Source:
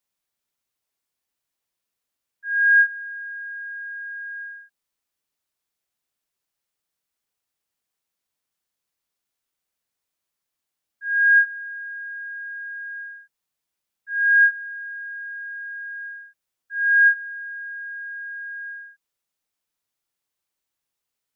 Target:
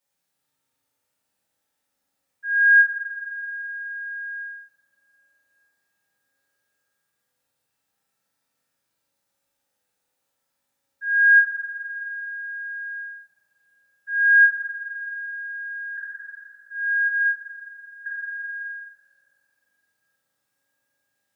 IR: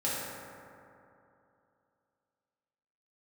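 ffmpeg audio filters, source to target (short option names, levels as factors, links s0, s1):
-filter_complex "[0:a]asettb=1/sr,asplit=3[s0][s1][s2];[s0]atrim=end=15.974[s3];[s1]atrim=start=15.97:end=18.06,asetpts=PTS-STARTPTS,afade=t=in:d=0.004:c=qsin,afade=t=out:st=2.086:d=0.004:c=qsin,acrossover=split=1600[s4][s5];[s4]adelay=220[s6];[s6][s5]amix=inputs=2:normalize=0,atrim=end_sample=92169[s7];[s2]atrim=start=18.056[s8];[s3][s7]acrossfade=d=0.004:c1=hsin:c2=qsin[s9];[s9][s8]acrossfade=d=0.004:c1=qsin:c2=hsin[s10];[1:a]atrim=start_sample=2205[s11];[s10][s11]afir=irnorm=-1:irlink=0"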